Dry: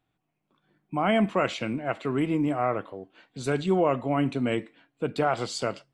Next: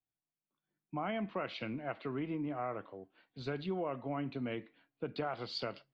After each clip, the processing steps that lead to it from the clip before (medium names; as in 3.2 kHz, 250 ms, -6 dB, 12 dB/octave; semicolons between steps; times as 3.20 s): Chebyshev low-pass 4.6 kHz, order 4; compression 4:1, threshold -29 dBFS, peak gain reduction 9 dB; three bands expanded up and down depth 40%; trim -5.5 dB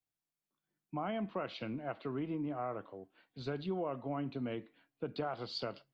dynamic bell 2.1 kHz, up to -6 dB, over -59 dBFS, Q 1.7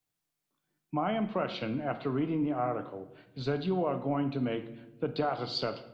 simulated room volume 350 m³, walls mixed, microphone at 0.42 m; trim +6.5 dB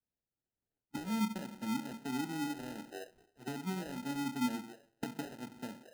auto-wah 230–2400 Hz, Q 4.9, down, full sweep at -32.5 dBFS; sample-and-hold 39×; trim +2 dB